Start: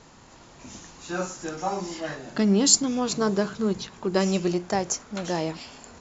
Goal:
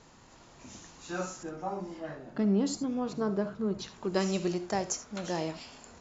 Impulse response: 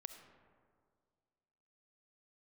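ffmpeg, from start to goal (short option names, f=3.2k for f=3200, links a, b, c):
-filter_complex "[0:a]asettb=1/sr,asplit=3[a][b][c];[a]atrim=end=1.434[d];[b]atrim=start=1.43:end=3.79,asetpts=PTS-STARTPTS,afade=t=in:d=0.004:c=qsin,afade=t=out:st=2.356:d=0.004:c=qsin,lowpass=f=1k:p=1[e];[c]atrim=start=3.786[f];[d][e]acrossfade=d=0.004:c1=hsin:c2=qsin[g];[g][f]acrossfade=d=0.004:c1=qsin:c2=hsin[h];[1:a]atrim=start_sample=2205,atrim=end_sample=3969[i];[h][i]afir=irnorm=-1:irlink=0"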